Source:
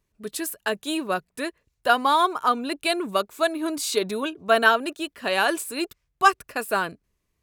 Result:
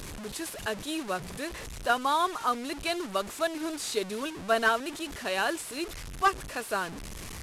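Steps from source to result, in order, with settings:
linear delta modulator 64 kbit/s, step −27.5 dBFS
level −6.5 dB

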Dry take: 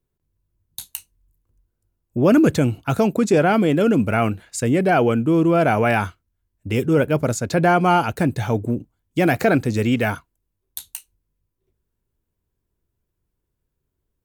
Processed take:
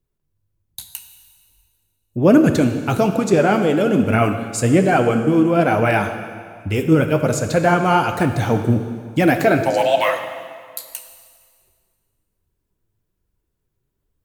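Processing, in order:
in parallel at +2 dB: speech leveller 0.5 s
0:09.65–0:10.90: on the sum: frequency shifter +410 Hz
flanger 1.2 Hz, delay 0.2 ms, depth 9.8 ms, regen +42%
dense smooth reverb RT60 1.9 s, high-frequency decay 0.95×, DRR 6.5 dB
level −2 dB

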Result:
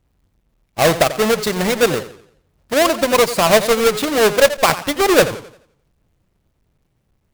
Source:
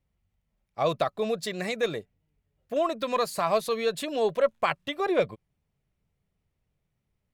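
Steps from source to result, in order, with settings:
each half-wave held at its own peak
feedback echo with a swinging delay time 87 ms, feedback 39%, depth 144 cents, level −13.5 dB
level +8 dB

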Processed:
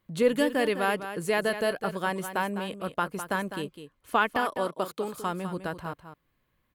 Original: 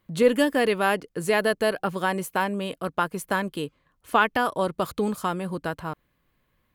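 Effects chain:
0:04.40–0:05.13: high-pass filter 160 Hz → 370 Hz 12 dB per octave
single-tap delay 204 ms −10.5 dB
level −4 dB

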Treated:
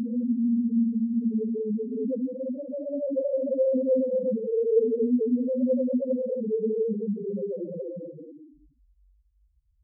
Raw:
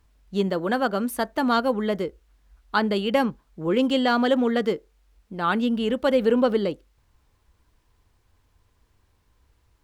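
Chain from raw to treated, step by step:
extreme stretch with random phases 7.2×, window 0.25 s, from 0:05.62
head-to-tape spacing loss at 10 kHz 32 dB
spectral peaks only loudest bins 2

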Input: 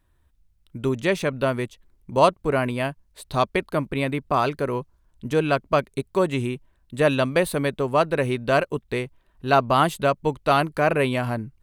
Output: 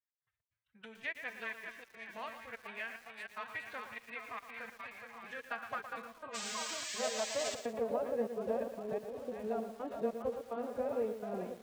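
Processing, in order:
noise gate with hold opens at −53 dBFS
low shelf with overshoot 120 Hz +13.5 dB, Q 1.5
downward compressor 4 to 1, threshold −26 dBFS, peak gain reduction 13 dB
echo with a time of its own for lows and highs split 500 Hz, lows 550 ms, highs 411 ms, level −5 dB
harmonic generator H 4 −24 dB, 6 −24 dB, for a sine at −13 dBFS
tuned comb filter 67 Hz, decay 2 s, harmonics all, mix 70%
band-pass filter sweep 1,900 Hz → 430 Hz, 0:05.24–0:08.33
gate pattern "x.xx.xxxxxx.xx" 147 BPM −24 dB
sound drawn into the spectrogram noise, 0:06.34–0:07.55, 960–8,300 Hz −49 dBFS
phase-vocoder pitch shift with formants kept +9 semitones
feedback echo at a low word length 114 ms, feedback 35%, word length 10 bits, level −9 dB
level +7.5 dB

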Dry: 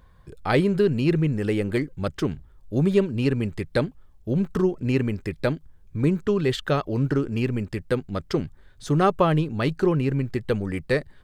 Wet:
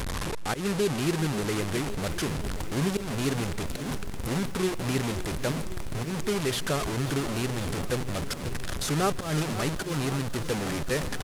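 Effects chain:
linear delta modulator 64 kbit/s, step −18.5 dBFS
high-shelf EQ 5,400 Hz +3.5 dB
single-tap delay 160 ms −21 dB
volume swells 136 ms
feedback echo at a low word length 537 ms, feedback 80%, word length 6 bits, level −12.5 dB
level −6.5 dB

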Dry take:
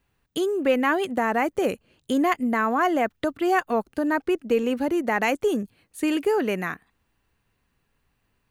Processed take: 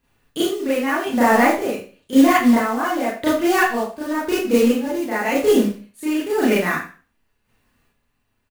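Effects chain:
square-wave tremolo 0.94 Hz, depth 60%, duty 40%
floating-point word with a short mantissa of 2 bits
far-end echo of a speakerphone 90 ms, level −17 dB
four-comb reverb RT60 0.37 s, combs from 26 ms, DRR −9 dB
level −1 dB

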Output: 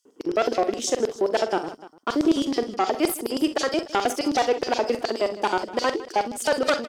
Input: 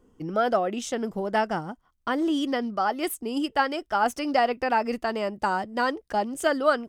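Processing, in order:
harmonic generator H 3 −8 dB, 4 −17 dB, 5 −9 dB, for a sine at −9 dBFS
auto-filter high-pass square 9.5 Hz 360–5,000 Hz
multi-tap delay 43/63/157/296 ms −11/−15.5/−17.5/−19.5 dB

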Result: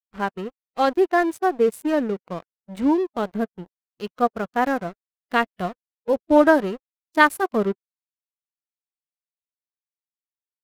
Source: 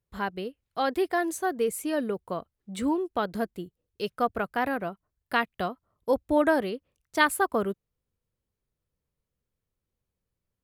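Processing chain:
adaptive Wiener filter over 9 samples
dead-zone distortion −41 dBFS
harmonic and percussive parts rebalanced harmonic +9 dB

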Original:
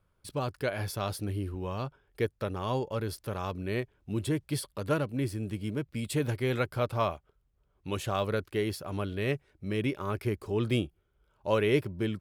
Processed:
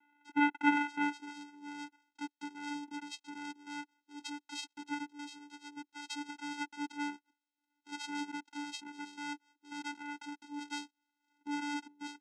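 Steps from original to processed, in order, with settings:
mid-hump overdrive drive 16 dB, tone 1,800 Hz, clips at −12.5 dBFS
band-pass filter sweep 1,400 Hz → 4,300 Hz, 0:00.88–0:01.59
channel vocoder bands 4, square 291 Hz
level +7 dB

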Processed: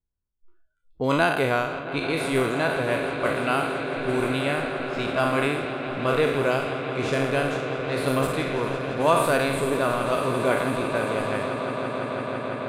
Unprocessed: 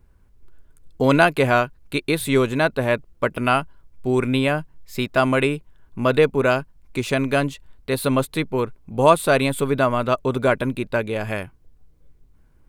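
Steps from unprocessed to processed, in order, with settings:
peak hold with a decay on every bin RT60 0.89 s
on a send: echo that builds up and dies away 167 ms, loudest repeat 8, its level −14.5 dB
on the sum: low-pass that shuts in the quiet parts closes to 1,400 Hz, open at −11.5 dBFS
noise reduction from a noise print of the clip's start 25 dB
level −7.5 dB

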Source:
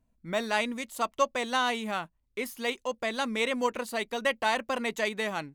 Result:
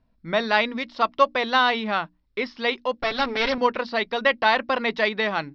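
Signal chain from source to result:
0:02.99–0:03.58: lower of the sound and its delayed copy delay 7.2 ms
Chebyshev low-pass with heavy ripple 5,500 Hz, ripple 3 dB
mains-hum notches 60/120/180/240/300 Hz
level +9 dB

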